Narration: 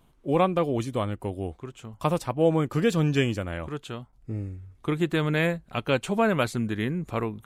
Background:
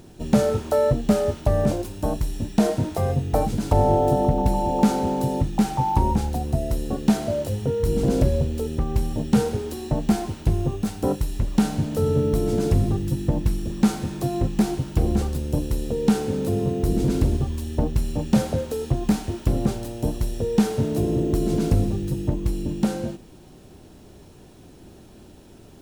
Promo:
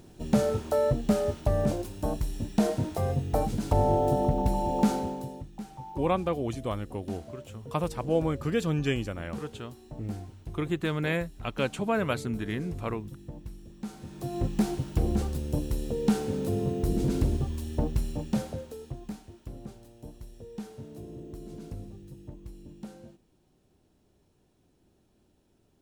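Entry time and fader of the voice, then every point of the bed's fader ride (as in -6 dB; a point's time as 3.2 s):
5.70 s, -4.5 dB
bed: 4.94 s -5.5 dB
5.46 s -20 dB
13.83 s -20 dB
14.45 s -5.5 dB
17.99 s -5.5 dB
19.3 s -20.5 dB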